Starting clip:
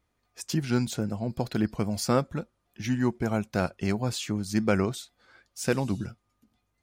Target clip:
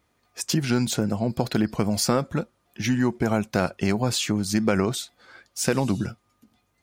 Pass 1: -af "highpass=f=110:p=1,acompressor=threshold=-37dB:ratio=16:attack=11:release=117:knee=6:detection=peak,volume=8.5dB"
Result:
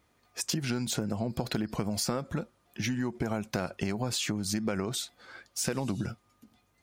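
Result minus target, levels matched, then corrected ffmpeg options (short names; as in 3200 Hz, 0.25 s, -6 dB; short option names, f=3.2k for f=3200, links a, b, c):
compressor: peak gain reduction +10.5 dB
-af "highpass=f=110:p=1,acompressor=threshold=-26dB:ratio=16:attack=11:release=117:knee=6:detection=peak,volume=8.5dB"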